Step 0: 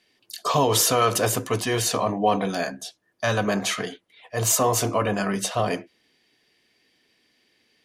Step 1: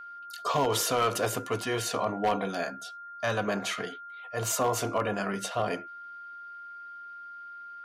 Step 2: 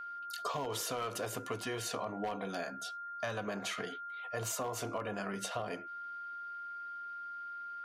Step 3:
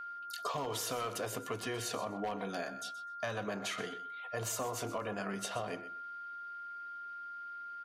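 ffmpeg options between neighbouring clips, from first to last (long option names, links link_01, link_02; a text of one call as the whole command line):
ffmpeg -i in.wav -af "bass=frequency=250:gain=-4,treble=frequency=4000:gain=-5,aeval=exprs='val(0)+0.0158*sin(2*PI*1400*n/s)':channel_layout=same,aeval=exprs='0.224*(abs(mod(val(0)/0.224+3,4)-2)-1)':channel_layout=same,volume=-5dB" out.wav
ffmpeg -i in.wav -af "acompressor=threshold=-35dB:ratio=6" out.wav
ffmpeg -i in.wav -af "aecho=1:1:126|252:0.2|0.0319" out.wav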